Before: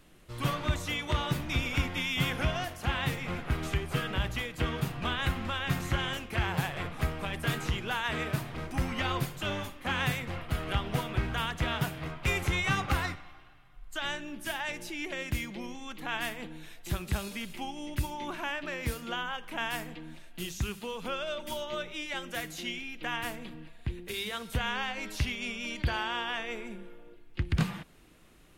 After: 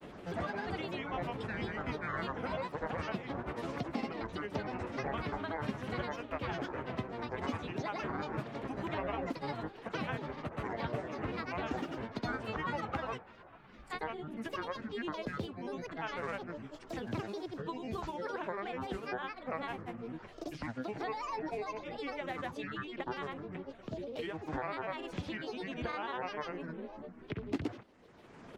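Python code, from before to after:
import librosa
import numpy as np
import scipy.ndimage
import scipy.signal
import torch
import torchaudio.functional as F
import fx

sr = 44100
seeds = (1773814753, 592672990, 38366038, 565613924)

y = fx.granulator(x, sr, seeds[0], grain_ms=100.0, per_s=20.0, spray_ms=100.0, spread_st=12)
y = fx.bandpass_q(y, sr, hz=500.0, q=0.58)
y = fx.band_squash(y, sr, depth_pct=70)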